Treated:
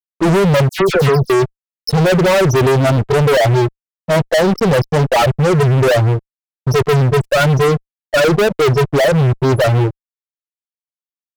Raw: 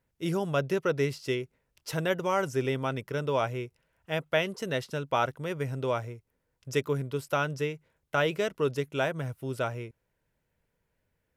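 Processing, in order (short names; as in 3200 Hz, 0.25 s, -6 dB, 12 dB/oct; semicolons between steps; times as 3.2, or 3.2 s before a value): bell 2100 Hz -13 dB 0.51 oct; loudest bins only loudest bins 4; fuzz box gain 44 dB, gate -52 dBFS; 0.69–1.3 dispersion lows, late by 99 ms, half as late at 2200 Hz; gain +3 dB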